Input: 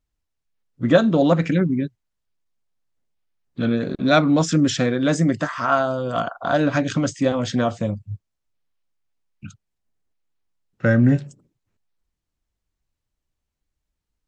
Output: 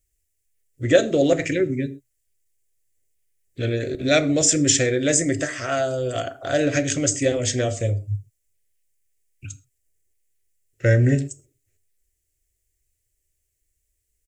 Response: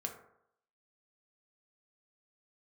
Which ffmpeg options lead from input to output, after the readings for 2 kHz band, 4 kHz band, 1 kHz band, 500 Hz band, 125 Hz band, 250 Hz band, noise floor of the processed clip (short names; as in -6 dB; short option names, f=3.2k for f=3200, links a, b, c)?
-0.5 dB, +2.5 dB, -8.0 dB, +0.5 dB, -0.5 dB, -4.5 dB, -75 dBFS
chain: -filter_complex "[0:a]firequalizer=gain_entry='entry(120,0);entry(180,-21);entry(360,0);entry(630,-5);entry(950,-24);entry(1900,2);entry(3900,-4);entry(7500,13)':delay=0.05:min_phase=1,asplit=2[a][b];[1:a]atrim=start_sample=2205,atrim=end_sample=3528,asetrate=26019,aresample=44100[c];[b][c]afir=irnorm=-1:irlink=0,volume=-5.5dB[d];[a][d]amix=inputs=2:normalize=0"